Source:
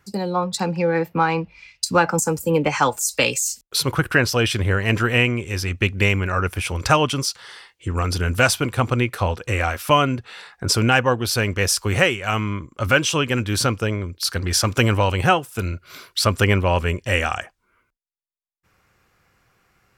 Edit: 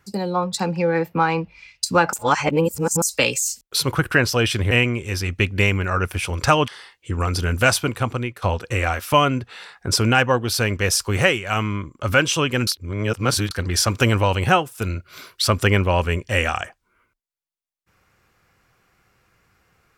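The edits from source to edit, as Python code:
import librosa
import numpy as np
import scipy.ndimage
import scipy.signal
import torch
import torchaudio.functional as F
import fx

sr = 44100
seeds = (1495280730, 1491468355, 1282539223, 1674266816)

y = fx.edit(x, sr, fx.reverse_span(start_s=2.13, length_s=0.89),
    fx.cut(start_s=4.71, length_s=0.42),
    fx.cut(start_s=7.1, length_s=0.35),
    fx.fade_out_to(start_s=8.6, length_s=0.59, floor_db=-11.5),
    fx.reverse_span(start_s=13.44, length_s=0.84), tone=tone)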